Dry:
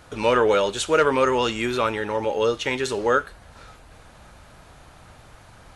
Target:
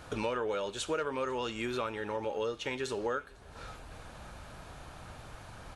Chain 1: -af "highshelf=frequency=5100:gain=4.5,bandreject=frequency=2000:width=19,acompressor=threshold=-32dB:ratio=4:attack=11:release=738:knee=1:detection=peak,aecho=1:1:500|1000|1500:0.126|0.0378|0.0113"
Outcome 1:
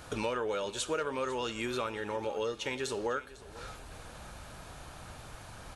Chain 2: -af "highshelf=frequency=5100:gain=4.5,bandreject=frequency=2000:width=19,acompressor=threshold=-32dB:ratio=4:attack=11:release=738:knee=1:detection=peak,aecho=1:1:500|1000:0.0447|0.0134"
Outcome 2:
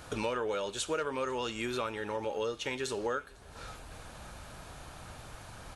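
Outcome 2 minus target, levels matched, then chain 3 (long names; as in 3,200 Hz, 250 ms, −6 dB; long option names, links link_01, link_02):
8,000 Hz band +4.0 dB
-af "highshelf=frequency=5100:gain=-2.5,bandreject=frequency=2000:width=19,acompressor=threshold=-32dB:ratio=4:attack=11:release=738:knee=1:detection=peak,aecho=1:1:500|1000:0.0447|0.0134"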